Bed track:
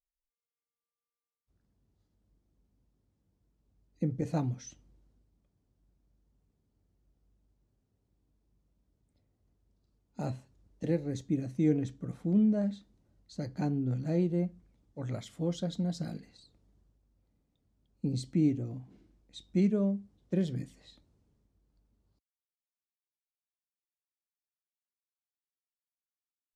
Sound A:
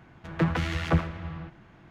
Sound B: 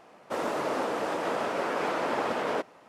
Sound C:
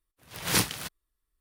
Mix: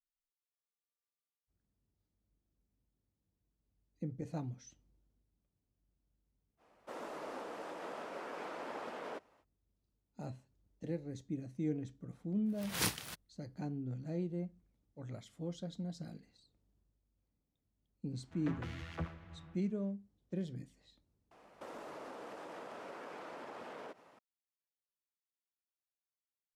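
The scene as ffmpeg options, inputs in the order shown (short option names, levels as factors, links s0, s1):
-filter_complex "[2:a]asplit=2[s0][s1];[0:a]volume=0.335[s2];[s0]highpass=140[s3];[s1]acompressor=threshold=0.0141:ratio=6:attack=3.2:release=140:knee=1:detection=peak[s4];[s3]atrim=end=2.88,asetpts=PTS-STARTPTS,volume=0.178,afade=t=in:d=0.05,afade=t=out:st=2.83:d=0.05,adelay=6570[s5];[3:a]atrim=end=1.4,asetpts=PTS-STARTPTS,volume=0.335,afade=t=in:d=0.004:c=hsin,afade=t=out:st=1.396:d=0.004:c=hsin,adelay=12270[s6];[1:a]atrim=end=1.9,asetpts=PTS-STARTPTS,volume=0.141,afade=t=in:d=0.1,afade=t=out:st=1.8:d=0.1,adelay=18070[s7];[s4]atrim=end=2.88,asetpts=PTS-STARTPTS,volume=0.398,afade=t=in:d=0.004:c=hsin,afade=t=out:st=2.876:d=0.004:c=hsin,adelay=21310[s8];[s2][s5][s6][s7][s8]amix=inputs=5:normalize=0"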